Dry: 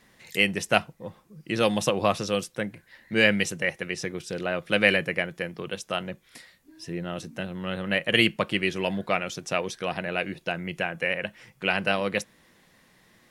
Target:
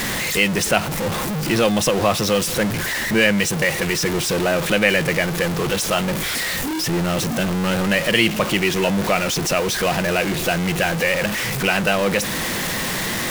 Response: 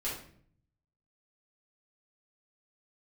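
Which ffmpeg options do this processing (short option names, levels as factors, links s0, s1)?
-filter_complex "[0:a]aeval=exprs='val(0)+0.5*0.0708*sgn(val(0))':c=same,asplit=2[s0][s1];[s1]alimiter=limit=0.224:level=0:latency=1:release=221,volume=1[s2];[s0][s2]amix=inputs=2:normalize=0,volume=0.891"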